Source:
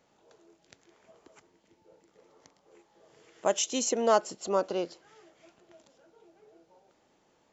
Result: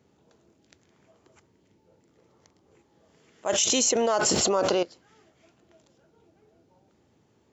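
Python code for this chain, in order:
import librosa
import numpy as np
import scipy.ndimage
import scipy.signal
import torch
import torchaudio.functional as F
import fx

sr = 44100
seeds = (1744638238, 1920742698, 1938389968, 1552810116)

y = fx.low_shelf(x, sr, hz=380.0, db=-7.5)
y = fx.dmg_noise_band(y, sr, seeds[0], low_hz=69.0, high_hz=420.0, level_db=-64.0)
y = fx.env_flatten(y, sr, amount_pct=100, at=(3.49, 4.83))
y = F.gain(torch.from_numpy(y), -1.5).numpy()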